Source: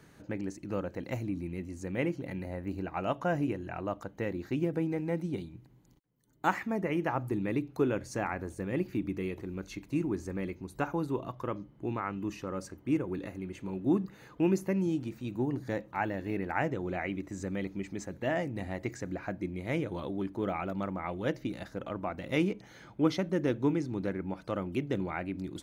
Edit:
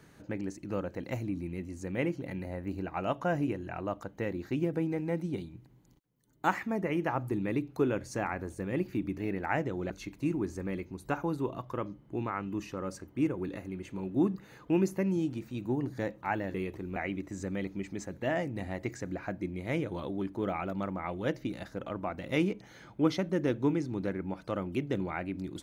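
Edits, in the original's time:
9.18–9.60 s: swap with 16.24–16.96 s

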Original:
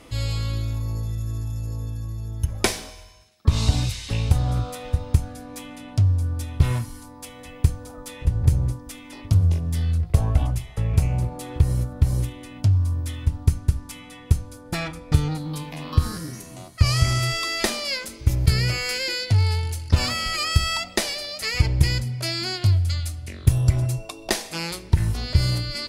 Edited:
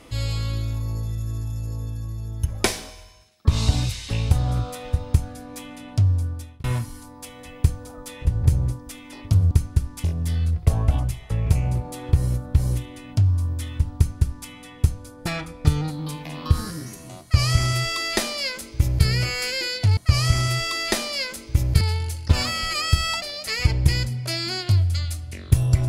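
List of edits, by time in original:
6.18–6.64 s: fade out
13.43–13.96 s: copy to 9.51 s
16.69–18.53 s: copy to 19.44 s
20.85–21.17 s: delete

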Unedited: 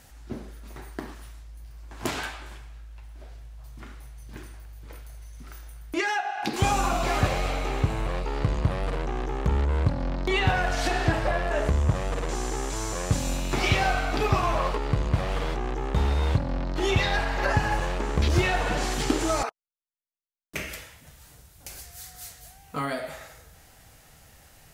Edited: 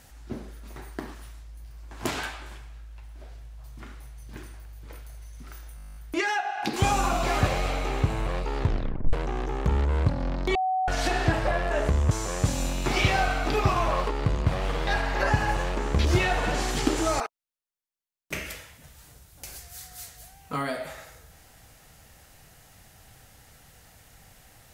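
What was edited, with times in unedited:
5.76 s: stutter 0.02 s, 11 plays
8.38 s: tape stop 0.55 s
10.35–10.68 s: bleep 750 Hz -22.5 dBFS
11.91–12.78 s: delete
15.54–17.10 s: delete

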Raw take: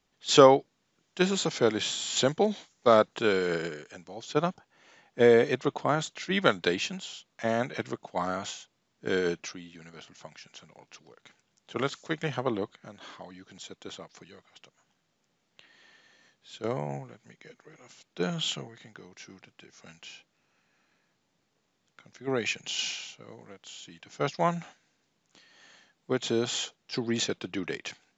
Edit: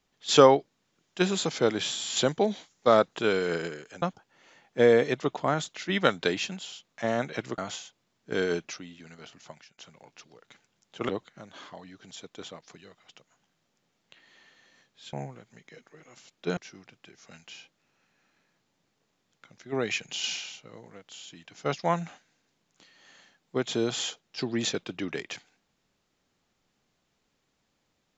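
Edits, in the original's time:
4.02–4.43 s: delete
7.99–8.33 s: delete
10.26–10.53 s: fade out, to -22 dB
11.84–12.56 s: delete
16.60–16.86 s: delete
18.30–19.12 s: delete

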